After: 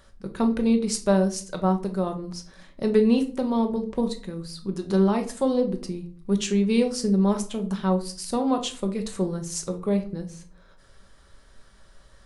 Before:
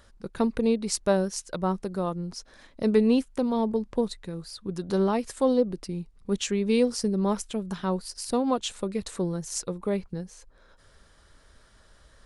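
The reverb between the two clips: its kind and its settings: shoebox room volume 350 m³, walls furnished, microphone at 1.1 m

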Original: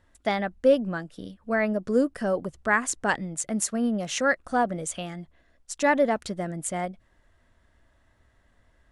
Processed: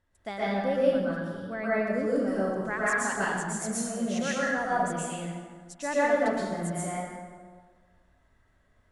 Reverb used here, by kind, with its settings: plate-style reverb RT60 1.6 s, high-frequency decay 0.6×, pre-delay 0.105 s, DRR -9 dB; gain -11.5 dB

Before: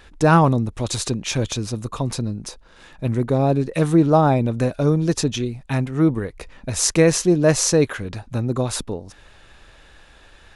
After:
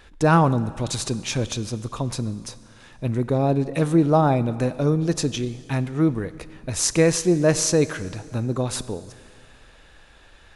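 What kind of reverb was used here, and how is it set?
Schroeder reverb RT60 2.2 s, combs from 32 ms, DRR 15.5 dB; gain -2.5 dB

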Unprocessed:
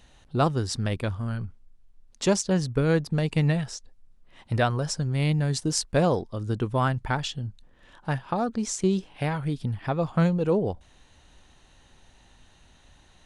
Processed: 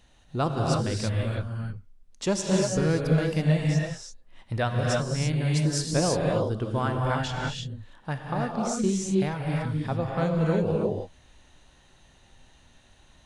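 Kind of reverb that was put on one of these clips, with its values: non-linear reverb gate 0.36 s rising, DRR -1.5 dB; gain -4 dB

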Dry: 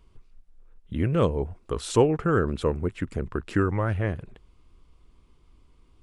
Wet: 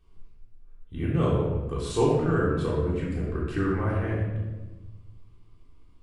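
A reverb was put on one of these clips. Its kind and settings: shoebox room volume 710 m³, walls mixed, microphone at 3.6 m; gain -10 dB

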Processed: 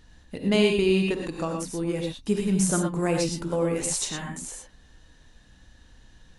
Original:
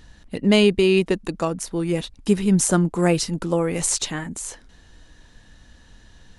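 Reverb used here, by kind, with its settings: non-linear reverb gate 0.14 s rising, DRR 1.5 dB; gain -7 dB

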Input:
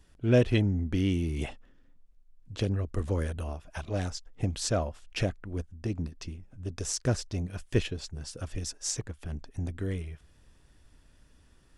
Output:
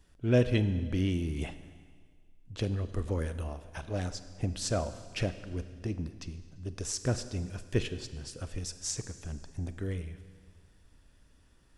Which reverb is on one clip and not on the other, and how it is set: Schroeder reverb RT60 1.8 s, combs from 33 ms, DRR 11.5 dB; gain -2.5 dB

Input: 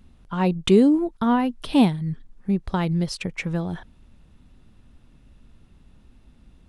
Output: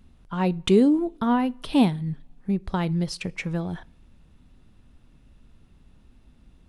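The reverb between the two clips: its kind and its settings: two-slope reverb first 0.31 s, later 1.6 s, from -20 dB, DRR 19.5 dB; gain -2 dB

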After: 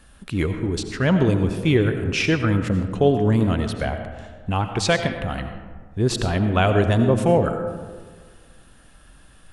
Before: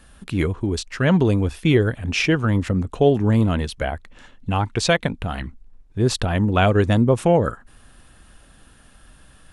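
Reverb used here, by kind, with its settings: digital reverb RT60 1.6 s, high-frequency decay 0.4×, pre-delay 50 ms, DRR 7 dB; gain -1.5 dB

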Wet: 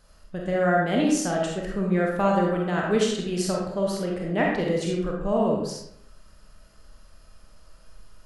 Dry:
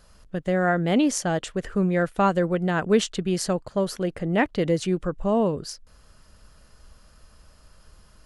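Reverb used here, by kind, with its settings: digital reverb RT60 0.76 s, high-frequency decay 0.7×, pre-delay 5 ms, DRR -2 dB; gain -4.5 dB

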